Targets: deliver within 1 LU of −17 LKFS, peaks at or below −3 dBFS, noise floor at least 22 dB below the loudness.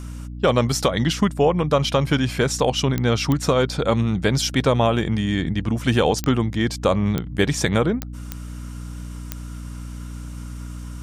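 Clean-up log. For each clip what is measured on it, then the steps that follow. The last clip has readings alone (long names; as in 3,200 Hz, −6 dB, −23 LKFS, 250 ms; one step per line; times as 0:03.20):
number of clicks 7; mains hum 60 Hz; hum harmonics up to 300 Hz; level of the hum −31 dBFS; integrated loudness −20.5 LKFS; sample peak −6.0 dBFS; target loudness −17.0 LKFS
→ click removal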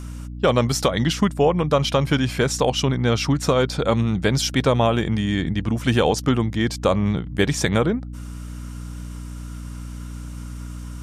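number of clicks 0; mains hum 60 Hz; hum harmonics up to 300 Hz; level of the hum −31 dBFS
→ mains-hum notches 60/120/180/240/300 Hz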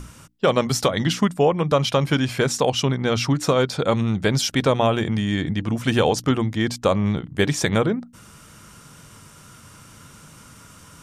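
mains hum none found; integrated loudness −21.0 LKFS; sample peak −5.5 dBFS; target loudness −17.0 LKFS
→ level +4 dB
brickwall limiter −3 dBFS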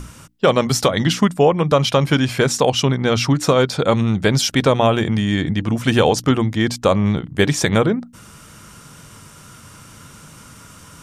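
integrated loudness −17.5 LKFS; sample peak −3.0 dBFS; background noise floor −43 dBFS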